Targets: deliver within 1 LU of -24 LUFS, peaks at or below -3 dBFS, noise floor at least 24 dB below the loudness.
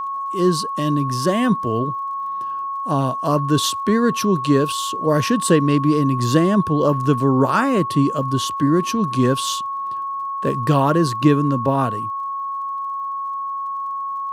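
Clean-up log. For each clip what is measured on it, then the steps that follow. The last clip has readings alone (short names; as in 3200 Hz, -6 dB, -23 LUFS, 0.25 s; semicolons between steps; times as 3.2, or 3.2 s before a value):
ticks 40/s; steady tone 1100 Hz; tone level -23 dBFS; loudness -19.5 LUFS; peak -2.0 dBFS; loudness target -24.0 LUFS
-> de-click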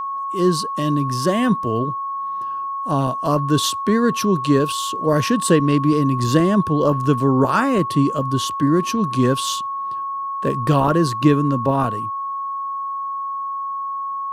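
ticks 1.4/s; steady tone 1100 Hz; tone level -23 dBFS
-> notch 1100 Hz, Q 30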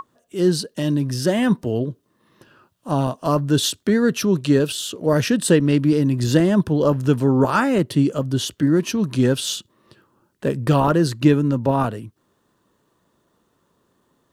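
steady tone none; loudness -19.5 LUFS; peak -2.5 dBFS; loudness target -24.0 LUFS
-> gain -4.5 dB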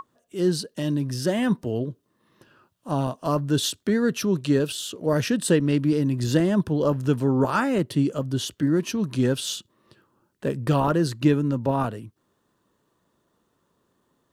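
loudness -24.0 LUFS; peak -7.0 dBFS; noise floor -71 dBFS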